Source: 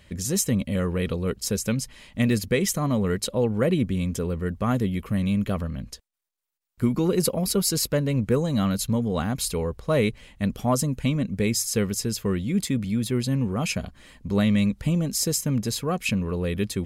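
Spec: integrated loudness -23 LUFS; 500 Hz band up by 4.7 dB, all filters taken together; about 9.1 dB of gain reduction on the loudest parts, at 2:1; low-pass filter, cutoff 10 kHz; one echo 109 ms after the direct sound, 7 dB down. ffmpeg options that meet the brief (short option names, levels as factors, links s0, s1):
-af "lowpass=10000,equalizer=f=500:t=o:g=5.5,acompressor=threshold=0.0282:ratio=2,aecho=1:1:109:0.447,volume=2.11"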